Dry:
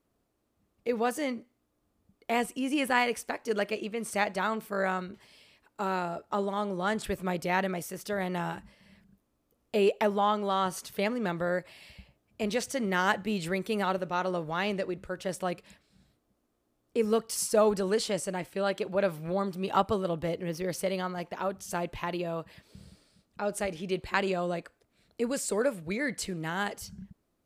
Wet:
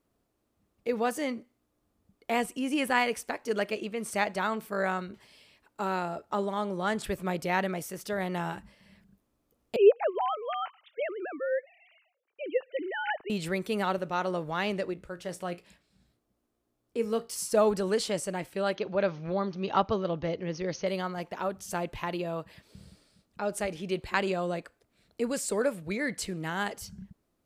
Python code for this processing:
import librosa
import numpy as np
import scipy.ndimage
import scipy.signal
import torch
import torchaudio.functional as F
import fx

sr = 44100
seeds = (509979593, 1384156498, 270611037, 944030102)

y = fx.sine_speech(x, sr, at=(9.76, 13.3))
y = fx.comb_fb(y, sr, f0_hz=58.0, decay_s=0.22, harmonics='all', damping=0.0, mix_pct=60, at=(14.93, 17.52))
y = fx.brickwall_lowpass(y, sr, high_hz=6700.0, at=(18.75, 20.87))